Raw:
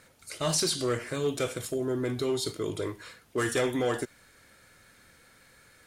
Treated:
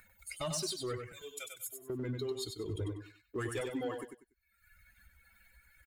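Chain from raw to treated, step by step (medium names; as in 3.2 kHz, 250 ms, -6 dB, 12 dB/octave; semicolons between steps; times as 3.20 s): expander on every frequency bin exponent 2; 1.12–1.90 s: pre-emphasis filter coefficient 0.97; reverb removal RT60 0.71 s; 2.65–3.61 s: bass shelf 160 Hz +11.5 dB; compression 3:1, threshold -43 dBFS, peak gain reduction 12.5 dB; waveshaping leveller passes 1; upward compressor, threshold -45 dBFS; feedback delay 96 ms, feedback 24%, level -6 dB; trim +1.5 dB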